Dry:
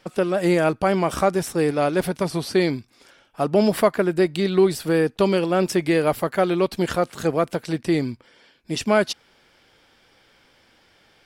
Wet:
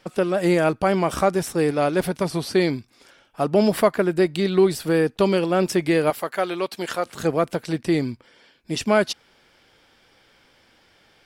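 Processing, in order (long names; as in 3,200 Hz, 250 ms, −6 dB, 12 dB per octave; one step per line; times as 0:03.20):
0:06.10–0:07.06: high-pass filter 670 Hz 6 dB per octave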